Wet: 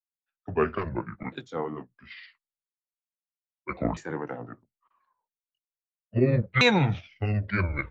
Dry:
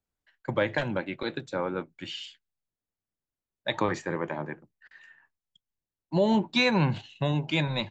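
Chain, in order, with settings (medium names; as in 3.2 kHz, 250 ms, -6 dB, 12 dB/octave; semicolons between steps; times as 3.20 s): sawtooth pitch modulation -11 st, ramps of 1322 ms; three bands expanded up and down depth 70%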